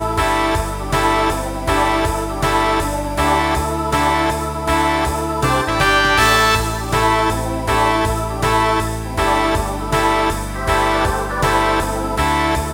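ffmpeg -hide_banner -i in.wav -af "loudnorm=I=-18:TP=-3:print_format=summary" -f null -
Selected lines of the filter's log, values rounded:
Input Integrated:    -16.9 LUFS
Input True Peak:      -1.3 dBTP
Input LRA:             2.0 LU
Input Threshold:     -26.9 LUFS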